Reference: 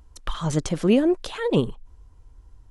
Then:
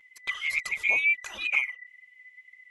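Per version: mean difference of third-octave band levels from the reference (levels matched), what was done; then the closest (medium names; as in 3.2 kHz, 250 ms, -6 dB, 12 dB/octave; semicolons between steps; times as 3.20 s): 12.5 dB: split-band scrambler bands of 2 kHz; touch-sensitive flanger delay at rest 8 ms, full sweep at -14.5 dBFS; trim -3 dB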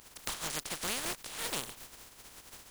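17.5 dB: spectral contrast reduction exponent 0.18; compression 3:1, threshold -30 dBFS, peak gain reduction 13 dB; trim -6 dB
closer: first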